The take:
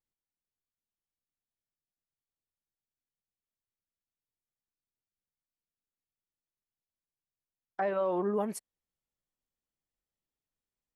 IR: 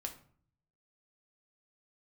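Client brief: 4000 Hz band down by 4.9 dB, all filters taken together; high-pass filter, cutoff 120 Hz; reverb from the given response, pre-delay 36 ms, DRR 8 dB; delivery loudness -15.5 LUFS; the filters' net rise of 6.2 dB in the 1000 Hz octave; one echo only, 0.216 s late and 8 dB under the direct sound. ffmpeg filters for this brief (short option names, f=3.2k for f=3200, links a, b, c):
-filter_complex "[0:a]highpass=120,equalizer=f=1k:t=o:g=8.5,equalizer=f=4k:t=o:g=-8,aecho=1:1:216:0.398,asplit=2[a][b];[1:a]atrim=start_sample=2205,adelay=36[c];[b][c]afir=irnorm=-1:irlink=0,volume=-6.5dB[d];[a][d]amix=inputs=2:normalize=0,volume=13dB"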